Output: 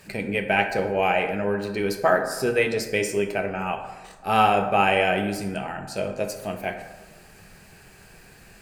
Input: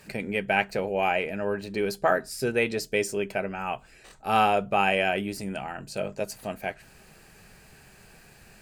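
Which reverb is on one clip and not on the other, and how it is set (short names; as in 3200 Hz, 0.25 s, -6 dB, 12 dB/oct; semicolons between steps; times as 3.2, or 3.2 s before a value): plate-style reverb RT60 1.2 s, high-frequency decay 0.45×, DRR 4.5 dB; gain +2 dB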